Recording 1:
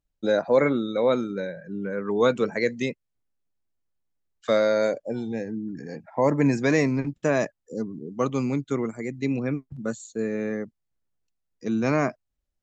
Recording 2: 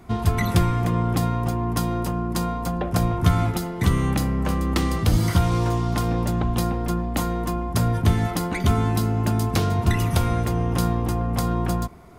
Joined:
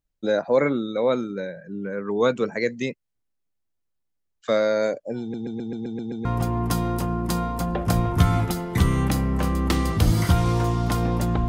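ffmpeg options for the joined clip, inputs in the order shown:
ffmpeg -i cue0.wav -i cue1.wav -filter_complex "[0:a]apad=whole_dur=11.48,atrim=end=11.48,asplit=8[link_01][link_02][link_03][link_04][link_05][link_06][link_07][link_08];[link_01]atrim=end=5.342[link_09];[link_02]atrim=start=5.208:end=5.342[link_10];[link_03]atrim=start=5.208:end=5.342[link_11];[link_04]atrim=start=5.208:end=5.342[link_12];[link_05]atrim=start=5.208:end=5.342[link_13];[link_06]atrim=start=5.208:end=5.342[link_14];[link_07]atrim=start=5.208:end=5.342[link_15];[link_08]atrim=start=5.208:end=5.342[link_16];[1:a]atrim=start=1.308:end=6.54[link_17];[link_09][link_10]acrossfade=duration=0.004:curve1=hsin:curve2=hsin[link_18];[link_18][link_11]acrossfade=duration=0.004:curve1=hsin:curve2=hsin[link_19];[link_19][link_12]acrossfade=duration=0.004:curve1=hsin:curve2=hsin[link_20];[link_20][link_13]acrossfade=duration=0.004:curve1=hsin:curve2=hsin[link_21];[link_21][link_14]acrossfade=duration=0.004:curve1=hsin:curve2=hsin[link_22];[link_22][link_15]acrossfade=duration=0.004:curve1=hsin:curve2=hsin[link_23];[link_23][link_16]acrossfade=duration=0.004:curve1=hsin:curve2=hsin[link_24];[link_24][link_17]acrossfade=duration=0.004:curve1=hsin:curve2=hsin" out.wav

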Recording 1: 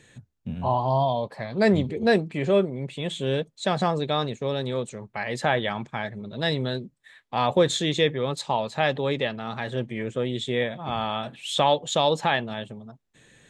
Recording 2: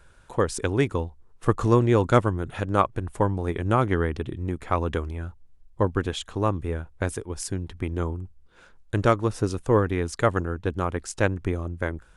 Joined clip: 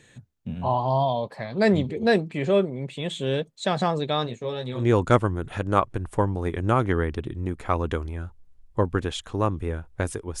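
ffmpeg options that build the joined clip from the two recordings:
ffmpeg -i cue0.wav -i cue1.wav -filter_complex "[0:a]asplit=3[link_01][link_02][link_03];[link_01]afade=type=out:start_time=4.26:duration=0.02[link_04];[link_02]flanger=delay=16.5:depth=2.2:speed=0.2,afade=type=in:start_time=4.26:duration=0.02,afade=type=out:start_time=4.86:duration=0.02[link_05];[link_03]afade=type=in:start_time=4.86:duration=0.02[link_06];[link_04][link_05][link_06]amix=inputs=3:normalize=0,apad=whole_dur=10.4,atrim=end=10.4,atrim=end=4.86,asetpts=PTS-STARTPTS[link_07];[1:a]atrim=start=1.76:end=7.42,asetpts=PTS-STARTPTS[link_08];[link_07][link_08]acrossfade=duration=0.12:curve1=tri:curve2=tri" out.wav

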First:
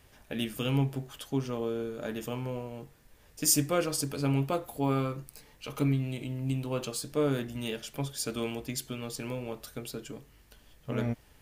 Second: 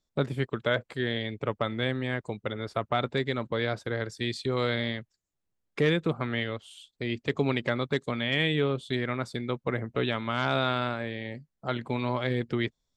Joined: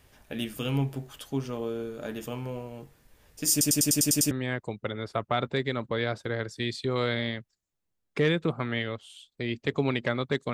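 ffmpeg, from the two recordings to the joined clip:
ffmpeg -i cue0.wav -i cue1.wav -filter_complex "[0:a]apad=whole_dur=10.53,atrim=end=10.53,asplit=8[link_01][link_02][link_03][link_04][link_05][link_06][link_07][link_08];[link_01]atrim=end=3.612[link_09];[link_02]atrim=start=3.508:end=3.612[link_10];[link_03]atrim=start=3.508:end=3.612[link_11];[link_04]atrim=start=3.508:end=3.612[link_12];[link_05]atrim=start=3.508:end=3.612[link_13];[link_06]atrim=start=3.508:end=3.612[link_14];[link_07]atrim=start=3.508:end=3.612[link_15];[link_08]atrim=start=3.508:end=3.612[link_16];[1:a]atrim=start=1.918:end=8.14[link_17];[link_09][link_10]acrossfade=duration=0.004:curve1=hsin:curve2=hsin[link_18];[link_18][link_11]acrossfade=duration=0.004:curve1=hsin:curve2=hsin[link_19];[link_19][link_12]acrossfade=duration=0.004:curve1=hsin:curve2=hsin[link_20];[link_20][link_13]acrossfade=duration=0.004:curve1=hsin:curve2=hsin[link_21];[link_21][link_14]acrossfade=duration=0.004:curve1=hsin:curve2=hsin[link_22];[link_22][link_15]acrossfade=duration=0.004:curve1=hsin:curve2=hsin[link_23];[link_23][link_16]acrossfade=duration=0.004:curve1=hsin:curve2=hsin[link_24];[link_24][link_17]acrossfade=duration=0.004:curve1=hsin:curve2=hsin" out.wav

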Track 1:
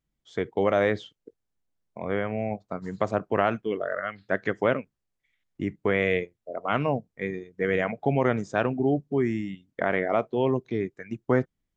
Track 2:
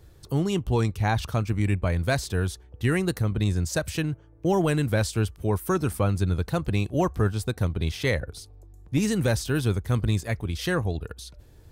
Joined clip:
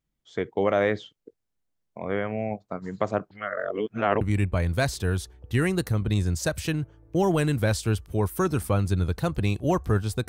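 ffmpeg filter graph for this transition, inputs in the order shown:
ffmpeg -i cue0.wav -i cue1.wav -filter_complex "[0:a]apad=whole_dur=10.28,atrim=end=10.28,asplit=2[link_01][link_02];[link_01]atrim=end=3.312[link_03];[link_02]atrim=start=3.308:end=4.212,asetpts=PTS-STARTPTS,areverse[link_04];[1:a]atrim=start=1.508:end=7.58[link_05];[link_03][link_04]acrossfade=duration=0.004:curve1=hsin:curve2=hsin[link_06];[link_06][link_05]acrossfade=duration=0.004:curve1=hsin:curve2=hsin" out.wav

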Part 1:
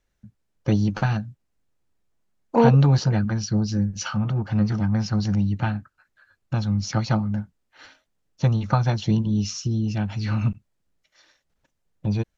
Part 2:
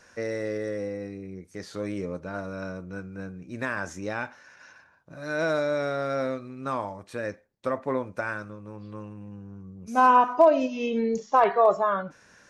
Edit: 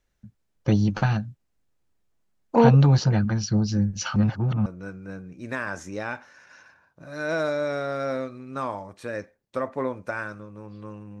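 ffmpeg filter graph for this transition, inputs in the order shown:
ffmpeg -i cue0.wav -i cue1.wav -filter_complex "[0:a]apad=whole_dur=11.2,atrim=end=11.2,asplit=2[link_01][link_02];[link_01]atrim=end=4.162[link_03];[link_02]atrim=start=4.158:end=4.662,asetpts=PTS-STARTPTS,areverse[link_04];[1:a]atrim=start=2.758:end=9.3[link_05];[link_03][link_04]acrossfade=duration=0.004:curve1=hsin:curve2=hsin[link_06];[link_06][link_05]acrossfade=duration=0.004:curve1=hsin:curve2=hsin" out.wav

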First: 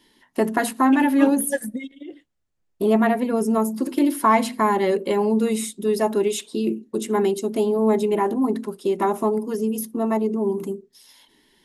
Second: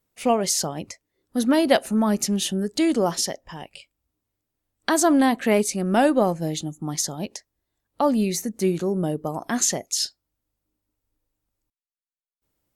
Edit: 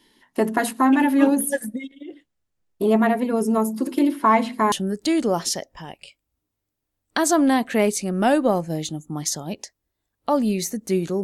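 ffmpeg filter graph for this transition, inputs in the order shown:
ffmpeg -i cue0.wav -i cue1.wav -filter_complex "[0:a]asettb=1/sr,asplit=3[link_01][link_02][link_03];[link_01]atrim=end=4.074[link_04];[link_02]atrim=start=4.07:end=4.72,asetpts=PTS-STARTPTS,afade=type=in:duration=0.004:curve=qsin,afade=type=out:start_time=0.646:duration=0.004:curve=qsin,acrossover=split=3900[link_05][link_06];[link_06]acompressor=threshold=-47dB:ratio=4:attack=1:release=60[link_07];[link_05][link_07]amix=inputs=2:normalize=0[link_08];[link_03]atrim=start=4.716[link_09];[link_04][link_08]acrossfade=duration=0.004:curve1=hsin:curve2=qsin[link_10];[link_10][link_09]acrossfade=duration=0.004:curve1=qsin:curve2=hsin,apad=whole_dur=11.23,atrim=end=11.23,atrim=end=4.722[link_11];[1:a]atrim=start=2.438:end=8.95[link_12];[link_11][link_12]acrossfade=duration=0.004:curve1=hsin:curve2=hsin" out.wav

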